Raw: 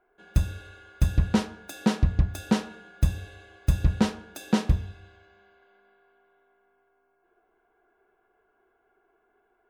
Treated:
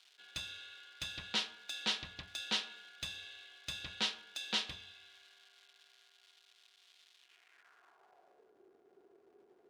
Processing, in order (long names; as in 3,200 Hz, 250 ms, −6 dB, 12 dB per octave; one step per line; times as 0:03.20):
surface crackle 570 per second −49 dBFS
band-pass filter sweep 3,500 Hz → 380 Hz, 0:07.17–0:08.56
level +6.5 dB